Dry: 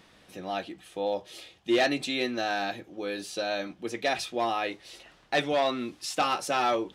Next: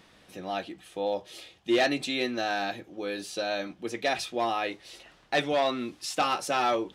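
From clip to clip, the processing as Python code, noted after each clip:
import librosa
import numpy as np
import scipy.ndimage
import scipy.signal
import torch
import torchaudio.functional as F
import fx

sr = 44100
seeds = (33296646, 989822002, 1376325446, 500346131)

y = x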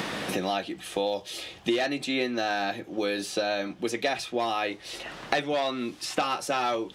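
y = fx.band_squash(x, sr, depth_pct=100)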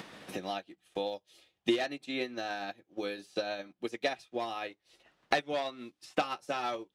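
y = fx.upward_expand(x, sr, threshold_db=-44.0, expansion=2.5)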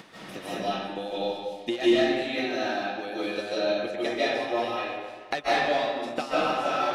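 y = fx.rev_freeverb(x, sr, rt60_s=1.6, hf_ratio=0.7, predelay_ms=115, drr_db=-9.5)
y = F.gain(torch.from_numpy(y), -2.0).numpy()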